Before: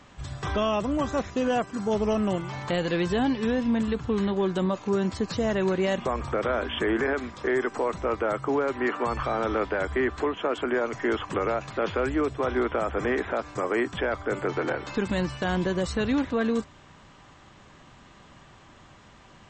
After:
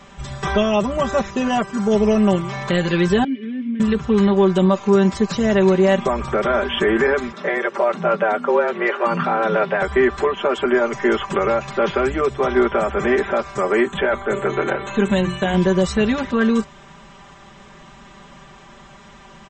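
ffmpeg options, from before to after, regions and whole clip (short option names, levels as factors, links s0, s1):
-filter_complex "[0:a]asettb=1/sr,asplit=3[s0][s1][s2];[s0]atrim=end=3.244[s3];[s1]atrim=start=3.24:end=3.8,asetpts=PTS-STARTPTS,afade=t=in:d=0.004:c=qsin,afade=t=out:st=0.556:d=0.004:c=qsin,equalizer=f=750:t=o:w=2:g=5.5,asplit=2[s4][s5];[s5]highpass=f=720:p=1,volume=3.55,asoftclip=type=tanh:threshold=0.211[s6];[s4][s6]amix=inputs=2:normalize=0,lowpass=f=1000:p=1,volume=0.501,asplit=3[s7][s8][s9];[s7]bandpass=f=270:t=q:w=8,volume=1[s10];[s8]bandpass=f=2290:t=q:w=8,volume=0.501[s11];[s9]bandpass=f=3010:t=q:w=8,volume=0.355[s12];[s10][s11][s12]amix=inputs=3:normalize=0[s13];[s2]atrim=start=3.796[s14];[s3][s13]acrossfade=d=0.004:c1=hsin:c2=qsin[s15];[s15][s14]acrossfade=d=0.004:c1=qsin:c2=hsin,asettb=1/sr,asplit=3[s16][s17][s18];[s16]atrim=end=7.324[s19];[s17]atrim=start=7.32:end=9.82,asetpts=PTS-STARTPTS,afade=t=in:d=0.004:c=qsin,afade=t=out:st=2.496:d=0.004:c=qsin,lowpass=4400,afreqshift=110[s20];[s18]atrim=start=9.816[s21];[s19][s20]acrossfade=d=0.004:c1=hsin:c2=qsin[s22];[s22][s21]acrossfade=d=0.004:c1=qsin:c2=hsin,asettb=1/sr,asplit=3[s23][s24][s25];[s23]atrim=end=13.854[s26];[s24]atrim=start=13.85:end=15.54,asetpts=PTS-STARTPTS,afade=t=in:d=0.004:c=qsin,afade=t=out:st=1.686:d=0.004:c=qsin,asuperstop=centerf=5000:order=20:qfactor=2.8,bandreject=f=60:t=h:w=6,bandreject=f=120:t=h:w=6,bandreject=f=180:t=h:w=6,bandreject=f=240:t=h:w=6,bandreject=f=300:t=h:w=6,bandreject=f=360:t=h:w=6,bandreject=f=420:t=h:w=6[s27];[s25]atrim=start=15.536[s28];[s26][s27]acrossfade=d=0.004:c1=hsin:c2=qsin[s29];[s29][s28]acrossfade=d=0.004:c1=qsin:c2=hsin,bandreject=f=4400:w=14,aecho=1:1:5.1:0.87,volume=1.88"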